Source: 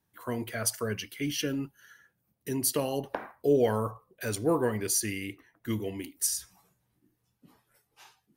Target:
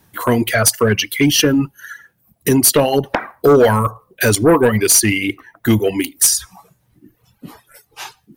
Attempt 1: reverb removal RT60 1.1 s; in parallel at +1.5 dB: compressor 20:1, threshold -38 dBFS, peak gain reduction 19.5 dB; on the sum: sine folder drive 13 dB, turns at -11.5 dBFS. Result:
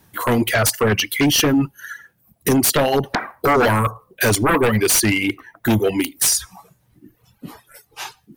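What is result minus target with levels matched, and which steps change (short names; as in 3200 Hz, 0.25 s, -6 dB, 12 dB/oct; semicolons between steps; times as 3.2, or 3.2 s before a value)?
sine folder: distortion +12 dB
change: sine folder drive 13 dB, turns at -5.5 dBFS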